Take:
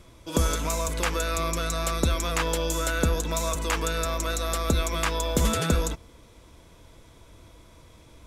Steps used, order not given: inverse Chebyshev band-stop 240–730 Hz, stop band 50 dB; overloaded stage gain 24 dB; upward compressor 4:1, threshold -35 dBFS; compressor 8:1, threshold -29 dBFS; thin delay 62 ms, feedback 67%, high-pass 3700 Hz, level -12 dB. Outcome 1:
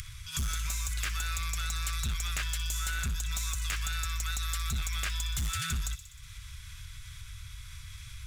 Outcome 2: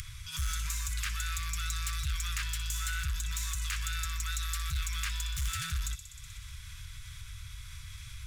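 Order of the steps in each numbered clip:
upward compressor > inverse Chebyshev band-stop > overloaded stage > thin delay > compressor; thin delay > overloaded stage > upward compressor > compressor > inverse Chebyshev band-stop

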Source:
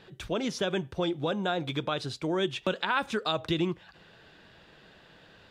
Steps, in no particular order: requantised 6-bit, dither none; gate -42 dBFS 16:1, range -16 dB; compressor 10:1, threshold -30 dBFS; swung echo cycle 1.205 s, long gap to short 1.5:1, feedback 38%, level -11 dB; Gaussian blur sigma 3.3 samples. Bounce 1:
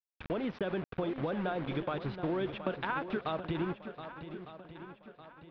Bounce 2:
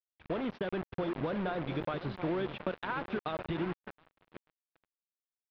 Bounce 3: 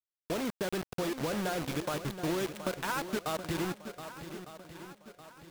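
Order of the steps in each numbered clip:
gate > requantised > Gaussian blur > compressor > swung echo; compressor > swung echo > requantised > Gaussian blur > gate; Gaussian blur > gate > compressor > requantised > swung echo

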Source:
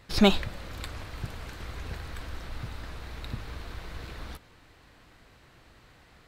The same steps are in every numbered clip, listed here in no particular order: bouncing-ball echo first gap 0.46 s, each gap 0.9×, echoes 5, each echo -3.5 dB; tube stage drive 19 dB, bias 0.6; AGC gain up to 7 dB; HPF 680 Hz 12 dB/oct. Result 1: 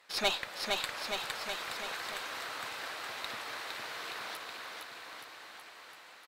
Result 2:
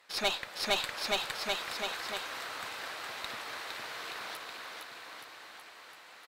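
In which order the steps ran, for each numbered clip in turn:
HPF > tube stage > AGC > bouncing-ball echo; bouncing-ball echo > AGC > HPF > tube stage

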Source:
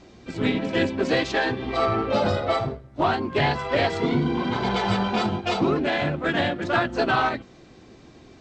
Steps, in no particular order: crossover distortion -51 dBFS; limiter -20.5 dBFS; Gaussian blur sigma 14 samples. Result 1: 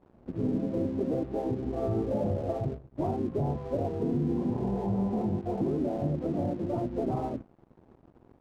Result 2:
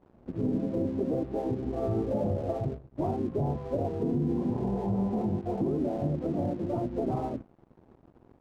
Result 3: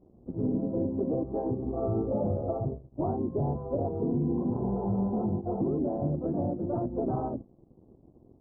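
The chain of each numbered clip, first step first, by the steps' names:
Gaussian blur > limiter > crossover distortion; Gaussian blur > crossover distortion > limiter; crossover distortion > Gaussian blur > limiter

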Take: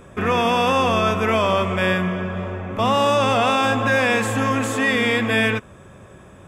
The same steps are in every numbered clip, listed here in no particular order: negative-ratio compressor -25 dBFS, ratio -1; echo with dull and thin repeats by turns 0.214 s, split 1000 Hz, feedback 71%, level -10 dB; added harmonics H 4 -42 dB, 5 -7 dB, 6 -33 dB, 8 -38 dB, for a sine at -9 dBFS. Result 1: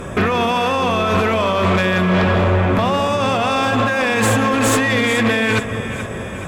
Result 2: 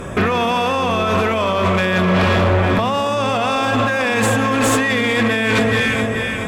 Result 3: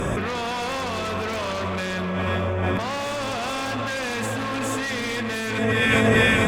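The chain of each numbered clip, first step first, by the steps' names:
negative-ratio compressor > echo with dull and thin repeats by turns > added harmonics; echo with dull and thin repeats by turns > negative-ratio compressor > added harmonics; echo with dull and thin repeats by turns > added harmonics > negative-ratio compressor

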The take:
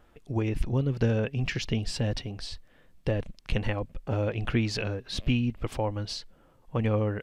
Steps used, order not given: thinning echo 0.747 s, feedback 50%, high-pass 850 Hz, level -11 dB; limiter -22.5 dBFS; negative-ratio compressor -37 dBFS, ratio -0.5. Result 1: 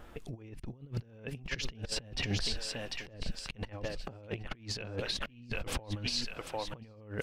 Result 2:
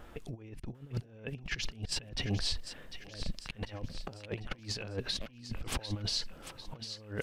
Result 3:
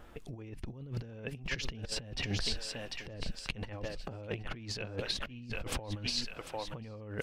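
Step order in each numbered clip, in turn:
thinning echo > negative-ratio compressor > limiter; negative-ratio compressor > thinning echo > limiter; thinning echo > limiter > negative-ratio compressor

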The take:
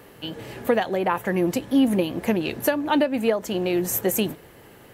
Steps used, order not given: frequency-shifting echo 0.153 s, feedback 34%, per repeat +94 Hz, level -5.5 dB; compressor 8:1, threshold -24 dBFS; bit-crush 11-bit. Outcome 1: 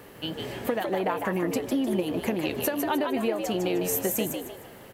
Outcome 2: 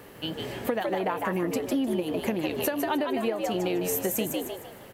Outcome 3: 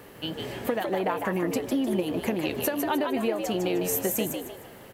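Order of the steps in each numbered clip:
bit-crush > compressor > frequency-shifting echo; bit-crush > frequency-shifting echo > compressor; compressor > bit-crush > frequency-shifting echo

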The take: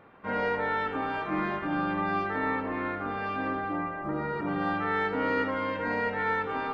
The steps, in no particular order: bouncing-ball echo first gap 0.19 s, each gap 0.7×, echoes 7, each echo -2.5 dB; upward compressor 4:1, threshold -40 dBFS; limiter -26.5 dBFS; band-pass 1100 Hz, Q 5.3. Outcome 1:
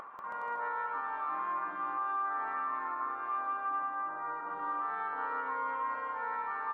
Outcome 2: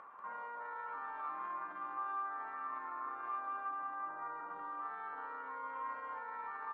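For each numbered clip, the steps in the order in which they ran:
band-pass > upward compressor > bouncing-ball echo > limiter; upward compressor > bouncing-ball echo > limiter > band-pass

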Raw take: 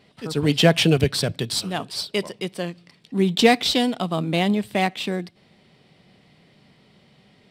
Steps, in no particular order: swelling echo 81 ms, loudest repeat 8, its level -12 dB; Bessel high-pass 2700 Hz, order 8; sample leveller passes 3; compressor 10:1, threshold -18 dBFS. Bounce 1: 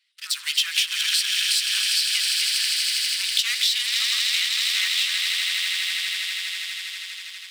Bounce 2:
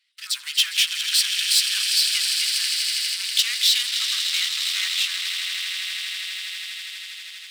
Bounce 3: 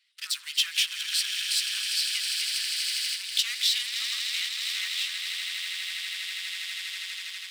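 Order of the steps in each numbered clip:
swelling echo > sample leveller > Bessel high-pass > compressor; compressor > swelling echo > sample leveller > Bessel high-pass; swelling echo > sample leveller > compressor > Bessel high-pass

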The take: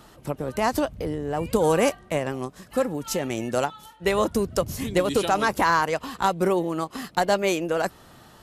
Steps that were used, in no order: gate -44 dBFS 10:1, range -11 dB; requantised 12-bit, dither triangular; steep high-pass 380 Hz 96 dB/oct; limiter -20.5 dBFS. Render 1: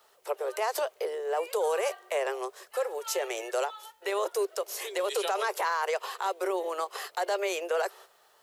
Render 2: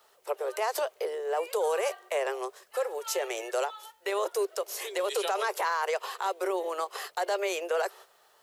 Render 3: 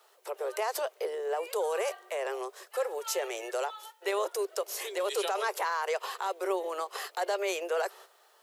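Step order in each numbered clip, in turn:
gate > steep high-pass > limiter > requantised; steep high-pass > gate > limiter > requantised; gate > requantised > limiter > steep high-pass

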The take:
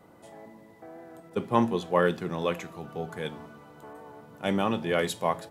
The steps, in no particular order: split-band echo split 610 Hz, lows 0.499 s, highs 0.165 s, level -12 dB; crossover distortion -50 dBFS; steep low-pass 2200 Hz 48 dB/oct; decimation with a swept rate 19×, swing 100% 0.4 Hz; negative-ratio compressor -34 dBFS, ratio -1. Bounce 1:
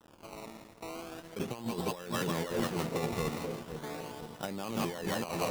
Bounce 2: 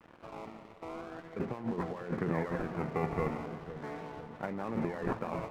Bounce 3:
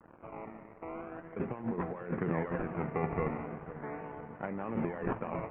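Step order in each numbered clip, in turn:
steep low-pass > decimation with a swept rate > split-band echo > negative-ratio compressor > crossover distortion; decimation with a swept rate > steep low-pass > negative-ratio compressor > crossover distortion > split-band echo; decimation with a swept rate > negative-ratio compressor > split-band echo > crossover distortion > steep low-pass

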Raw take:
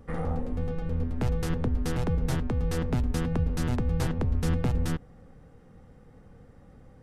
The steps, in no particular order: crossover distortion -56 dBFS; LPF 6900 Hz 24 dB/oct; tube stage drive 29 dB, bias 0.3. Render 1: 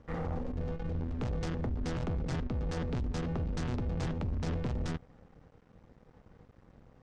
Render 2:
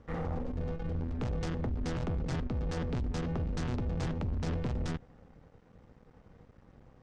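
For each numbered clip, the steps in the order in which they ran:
tube stage > crossover distortion > LPF; crossover distortion > tube stage > LPF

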